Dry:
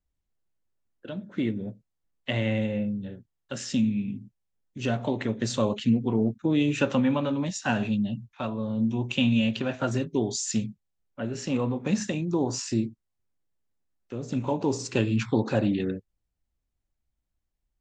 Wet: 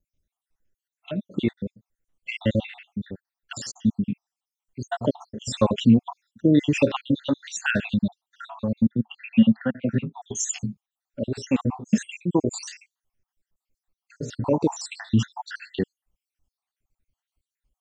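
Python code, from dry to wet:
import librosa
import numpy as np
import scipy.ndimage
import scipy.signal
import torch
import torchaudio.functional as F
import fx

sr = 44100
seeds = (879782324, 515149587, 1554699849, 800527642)

y = fx.spec_dropout(x, sr, seeds[0], share_pct=68)
y = fx.cabinet(y, sr, low_hz=110.0, low_slope=24, high_hz=2300.0, hz=(220.0, 360.0, 620.0, 990.0), db=(6, -9, -10, -6), at=(8.87, 10.22))
y = y * 10.0 ** (7.0 / 20.0)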